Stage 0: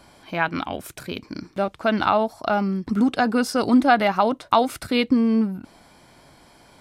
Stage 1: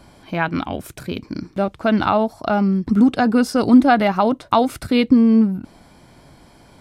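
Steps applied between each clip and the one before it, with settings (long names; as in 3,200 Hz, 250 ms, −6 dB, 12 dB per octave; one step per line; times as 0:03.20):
low-shelf EQ 370 Hz +8.5 dB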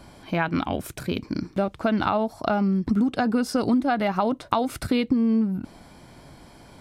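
downward compressor 6 to 1, threshold −19 dBFS, peak gain reduction 12.5 dB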